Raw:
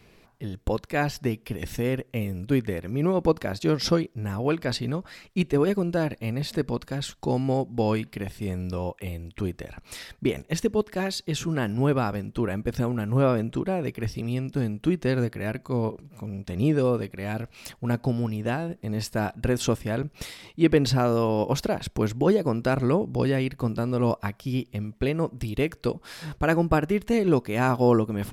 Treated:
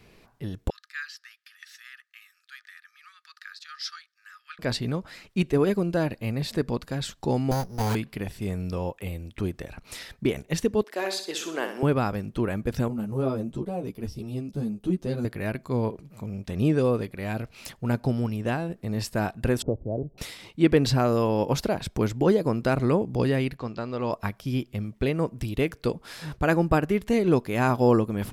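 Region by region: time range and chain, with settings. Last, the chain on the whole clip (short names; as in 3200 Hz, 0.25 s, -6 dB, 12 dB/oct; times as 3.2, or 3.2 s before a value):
0.7–4.59 rippled Chebyshev high-pass 1200 Hz, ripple 9 dB + high shelf 5600 Hz -8.5 dB
7.51–7.95 minimum comb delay 1.3 ms + careless resampling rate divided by 8×, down none, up hold
10.84–11.83 HPF 330 Hz 24 dB/oct + flutter echo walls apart 10.7 m, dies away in 0.47 s
12.88–15.25 bell 1900 Hz -11.5 dB 1.5 oct + ensemble effect
19.62–20.18 steep low-pass 700 Hz + dynamic EQ 190 Hz, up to -7 dB, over -39 dBFS, Q 1.2 + three-band squash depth 40%
23.57–24.13 LPF 5800 Hz 24 dB/oct + low shelf 350 Hz -10.5 dB
whole clip: dry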